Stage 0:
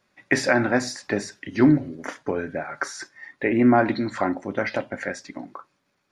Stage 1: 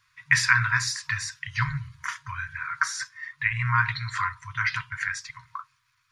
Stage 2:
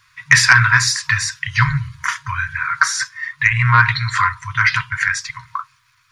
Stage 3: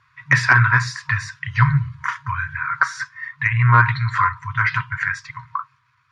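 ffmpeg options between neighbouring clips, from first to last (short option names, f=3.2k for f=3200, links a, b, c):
-af "afftfilt=real='re*(1-between(b*sr/4096,150,940))':imag='im*(1-between(b*sr/4096,150,940))':win_size=4096:overlap=0.75,volume=4dB"
-af "aeval=exprs='0.668*sin(PI/2*1.78*val(0)/0.668)':c=same,volume=2.5dB"
-af "bandpass=f=330:t=q:w=0.76:csg=0,volume=7.5dB"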